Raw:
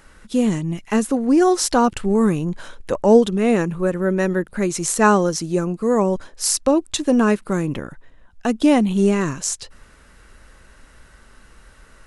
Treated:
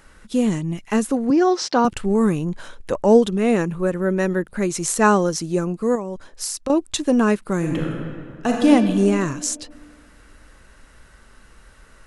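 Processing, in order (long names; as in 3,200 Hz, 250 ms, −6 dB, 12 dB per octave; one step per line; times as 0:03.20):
0:01.30–0:01.85: Chebyshev band-pass filter 150–5,400 Hz, order 3
0:05.95–0:06.70: downward compressor 6 to 1, threshold −24 dBFS, peak gain reduction 11.5 dB
0:07.57–0:08.68: thrown reverb, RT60 2.1 s, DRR −1 dB
level −1 dB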